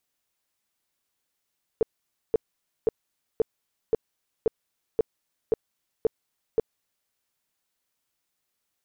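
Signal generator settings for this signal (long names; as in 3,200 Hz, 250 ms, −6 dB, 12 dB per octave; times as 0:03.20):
tone bursts 447 Hz, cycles 8, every 0.53 s, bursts 10, −16.5 dBFS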